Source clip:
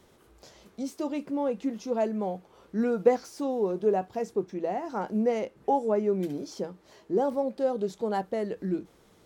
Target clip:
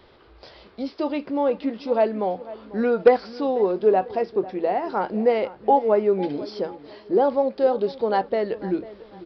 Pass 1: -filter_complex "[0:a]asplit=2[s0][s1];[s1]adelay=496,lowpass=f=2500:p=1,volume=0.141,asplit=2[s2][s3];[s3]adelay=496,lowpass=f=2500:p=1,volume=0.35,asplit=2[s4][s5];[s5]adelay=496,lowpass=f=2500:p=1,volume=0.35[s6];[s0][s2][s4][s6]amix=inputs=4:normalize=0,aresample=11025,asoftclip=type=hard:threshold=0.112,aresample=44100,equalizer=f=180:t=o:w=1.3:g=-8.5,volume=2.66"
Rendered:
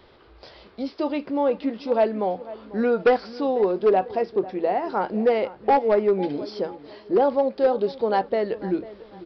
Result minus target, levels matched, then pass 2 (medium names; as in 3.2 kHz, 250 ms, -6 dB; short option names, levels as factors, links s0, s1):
hard clipper: distortion +12 dB
-filter_complex "[0:a]asplit=2[s0][s1];[s1]adelay=496,lowpass=f=2500:p=1,volume=0.141,asplit=2[s2][s3];[s3]adelay=496,lowpass=f=2500:p=1,volume=0.35,asplit=2[s4][s5];[s5]adelay=496,lowpass=f=2500:p=1,volume=0.35[s6];[s0][s2][s4][s6]amix=inputs=4:normalize=0,aresample=11025,asoftclip=type=hard:threshold=0.237,aresample=44100,equalizer=f=180:t=o:w=1.3:g=-8.5,volume=2.66"